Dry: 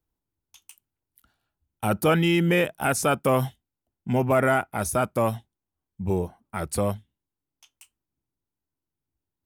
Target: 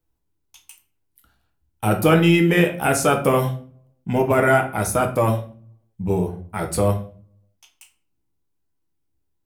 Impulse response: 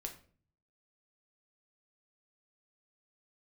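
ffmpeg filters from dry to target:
-filter_complex "[1:a]atrim=start_sample=2205[a];[0:a][a]afir=irnorm=-1:irlink=0,volume=7dB"

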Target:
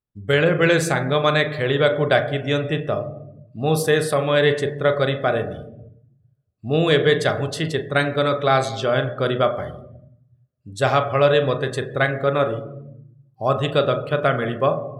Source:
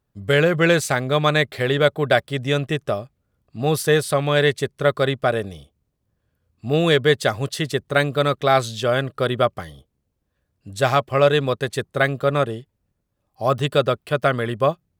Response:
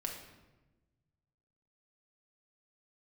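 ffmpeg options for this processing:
-filter_complex "[0:a]asplit=2[a][b];[1:a]atrim=start_sample=2205,highshelf=f=2.3k:g=-8,adelay=38[c];[b][c]afir=irnorm=-1:irlink=0,volume=-5dB[d];[a][d]amix=inputs=2:normalize=0,afftdn=nr=16:nf=-41,volume=-1dB"

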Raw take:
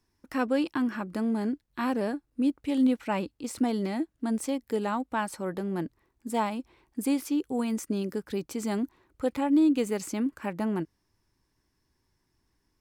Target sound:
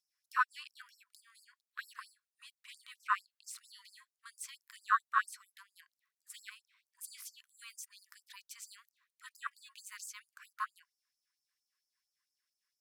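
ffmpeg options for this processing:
-af "afwtdn=0.0316,afftfilt=real='re*gte(b*sr/1024,970*pow(4800/970,0.5+0.5*sin(2*PI*4.4*pts/sr)))':imag='im*gte(b*sr/1024,970*pow(4800/970,0.5+0.5*sin(2*PI*4.4*pts/sr)))':win_size=1024:overlap=0.75,volume=10dB"

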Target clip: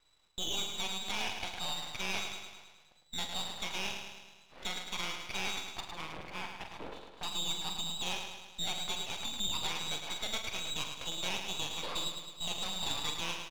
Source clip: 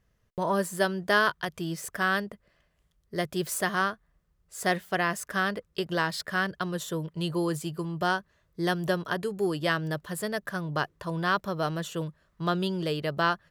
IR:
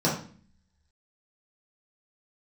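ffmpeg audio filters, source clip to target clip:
-filter_complex "[0:a]asettb=1/sr,asplit=3[a][b][c];[a]atrim=end=5.804[d];[b]atrim=start=5.8:end=7.23,asetpts=PTS-STARTPTS,afade=t=in:d=0.004:c=qsin,afade=t=out:st=1.426:d=0.004:c=qsin,aderivative[e];[c]atrim=start=7.226[f];[d][e]acrossfade=d=0.004:c1=hsin:c2=qsin[g];[g][f]acrossfade=d=0.004:c1=qsin:c2=hsin,asplit=2[h][i];[i]acompressor=threshold=-39dB:ratio=6,volume=-1dB[j];[h][j]amix=inputs=2:normalize=0,alimiter=limit=-21dB:level=0:latency=1:release=283,lowpass=f=3.4k:t=q:w=0.5098,lowpass=f=3.4k:t=q:w=0.6013,lowpass=f=3.4k:t=q:w=0.9,lowpass=f=3.4k:t=q:w=2.563,afreqshift=-4000,acrossover=split=1200[k][l];[k]aeval=exprs='0.0376*sin(PI/2*4.47*val(0)/0.0376)':c=same[m];[m][l]amix=inputs=2:normalize=0,asplit=2[n][o];[o]adelay=45,volume=-7.5dB[p];[n][p]amix=inputs=2:normalize=0,aecho=1:1:106|212|318|424|530|636|742|848:0.473|0.274|0.159|0.0923|0.0535|0.0311|0.018|0.0104,aeval=exprs='max(val(0),0)':c=same,volume=-4.5dB"

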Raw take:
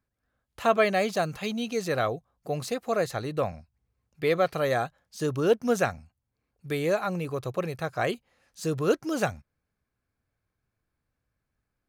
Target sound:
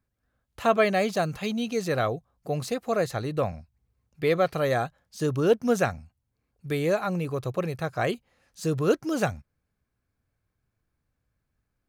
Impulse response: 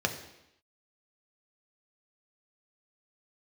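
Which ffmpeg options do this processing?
-af "lowshelf=f=260:g=4.5"

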